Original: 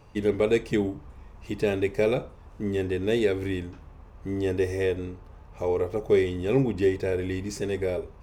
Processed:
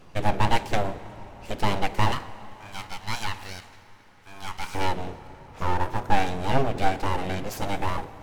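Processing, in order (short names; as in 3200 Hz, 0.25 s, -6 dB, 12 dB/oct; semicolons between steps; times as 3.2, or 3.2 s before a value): 2.12–4.75 HPF 540 Hz 24 dB/oct; full-wave rectifier; plate-style reverb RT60 4.2 s, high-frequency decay 0.65×, DRR 14.5 dB; gain +4.5 dB; MP3 128 kbps 48000 Hz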